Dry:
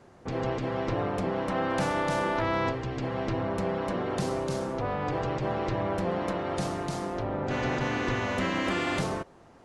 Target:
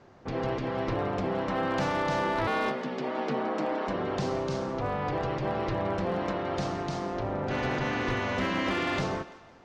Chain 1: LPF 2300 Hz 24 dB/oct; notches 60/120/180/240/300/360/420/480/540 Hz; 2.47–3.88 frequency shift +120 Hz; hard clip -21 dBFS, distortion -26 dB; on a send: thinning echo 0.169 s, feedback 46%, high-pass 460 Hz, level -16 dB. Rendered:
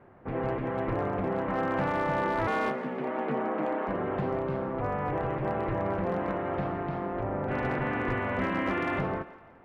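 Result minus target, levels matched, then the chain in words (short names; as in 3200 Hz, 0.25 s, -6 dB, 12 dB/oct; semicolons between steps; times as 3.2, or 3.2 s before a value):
8000 Hz band -14.5 dB
LPF 6100 Hz 24 dB/oct; notches 60/120/180/240/300/360/420/480/540 Hz; 2.47–3.88 frequency shift +120 Hz; hard clip -21 dBFS, distortion -25 dB; on a send: thinning echo 0.169 s, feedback 46%, high-pass 460 Hz, level -16 dB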